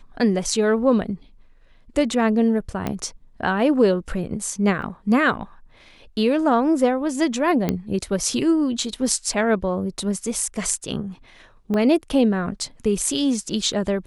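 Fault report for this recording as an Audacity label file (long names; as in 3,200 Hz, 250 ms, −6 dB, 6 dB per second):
2.870000	2.870000	click −12 dBFS
4.820000	4.820000	drop-out 3.1 ms
7.690000	7.690000	click −8 dBFS
11.740000	11.740000	drop-out 2.1 ms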